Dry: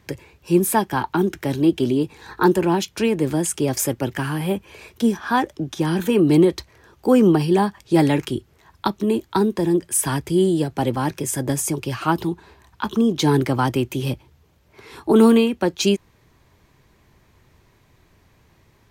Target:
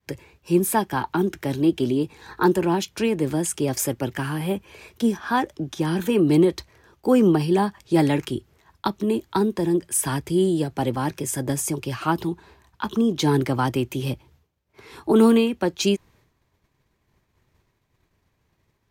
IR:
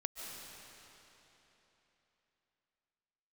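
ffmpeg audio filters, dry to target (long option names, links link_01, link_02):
-af "agate=range=-33dB:threshold=-48dB:ratio=3:detection=peak,volume=-2.5dB"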